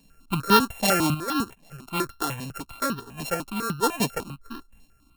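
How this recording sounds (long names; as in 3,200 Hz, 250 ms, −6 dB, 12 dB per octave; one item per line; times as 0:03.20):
a buzz of ramps at a fixed pitch in blocks of 32 samples
sample-and-hold tremolo
notches that jump at a steady rate 10 Hz 360–2,200 Hz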